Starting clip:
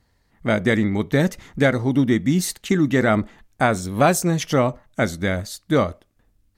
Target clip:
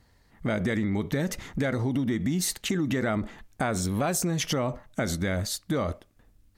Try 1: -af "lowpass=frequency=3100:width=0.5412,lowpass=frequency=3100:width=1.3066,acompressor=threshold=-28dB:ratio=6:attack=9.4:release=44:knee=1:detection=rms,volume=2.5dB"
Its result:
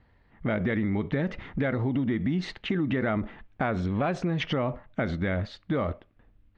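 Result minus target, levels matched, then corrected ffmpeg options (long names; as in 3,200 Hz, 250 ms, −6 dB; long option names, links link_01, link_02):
4,000 Hz band −4.5 dB
-af "acompressor=threshold=-28dB:ratio=6:attack=9.4:release=44:knee=1:detection=rms,volume=2.5dB"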